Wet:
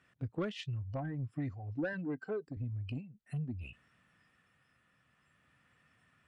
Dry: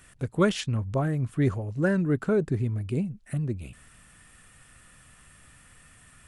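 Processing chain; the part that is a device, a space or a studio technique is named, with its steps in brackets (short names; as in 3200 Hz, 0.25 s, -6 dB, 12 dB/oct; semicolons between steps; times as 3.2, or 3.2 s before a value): spectral noise reduction 17 dB; AM radio (BPF 120–3200 Hz; compressor 6:1, threshold -37 dBFS, peak gain reduction 18 dB; soft clip -33 dBFS, distortion -18 dB; tremolo 0.51 Hz, depth 28%); 1.93–2.57 HPF 250 Hz 6 dB/oct; gain +5.5 dB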